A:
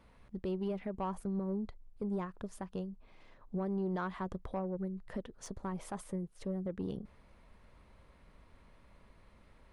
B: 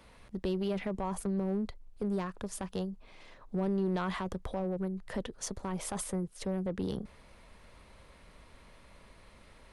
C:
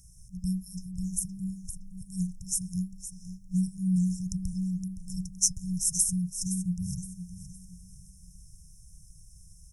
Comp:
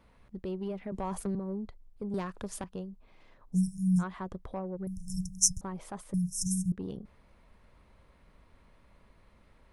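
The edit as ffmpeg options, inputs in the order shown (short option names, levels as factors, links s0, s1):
-filter_complex "[1:a]asplit=2[s0][s1];[2:a]asplit=3[s2][s3][s4];[0:a]asplit=6[s5][s6][s7][s8][s9][s10];[s5]atrim=end=0.922[s11];[s0]atrim=start=0.918:end=1.352[s12];[s6]atrim=start=1.348:end=2.142[s13];[s1]atrim=start=2.138:end=2.642[s14];[s7]atrim=start=2.638:end=3.58[s15];[s2]atrim=start=3.52:end=4.04[s16];[s8]atrim=start=3.98:end=4.872[s17];[s3]atrim=start=4.868:end=5.612[s18];[s9]atrim=start=5.608:end=6.142[s19];[s4]atrim=start=6.138:end=6.722[s20];[s10]atrim=start=6.718[s21];[s11][s12]acrossfade=d=0.004:c1=hsin:c2=hsin[s22];[s22][s13]acrossfade=d=0.004:c1=hsin:c2=hsin[s23];[s23][s14]acrossfade=d=0.004:c1=hsin:c2=hsin[s24];[s24][s15]acrossfade=d=0.004:c1=hsin:c2=hsin[s25];[s25][s16]acrossfade=d=0.06:c1=tri:c2=tri[s26];[s26][s17]acrossfade=d=0.06:c1=tri:c2=tri[s27];[s27][s18]acrossfade=d=0.004:c1=hsin:c2=hsin[s28];[s28][s19]acrossfade=d=0.004:c1=hsin:c2=hsin[s29];[s29][s20]acrossfade=d=0.004:c1=hsin:c2=hsin[s30];[s30][s21]acrossfade=d=0.004:c1=hsin:c2=hsin"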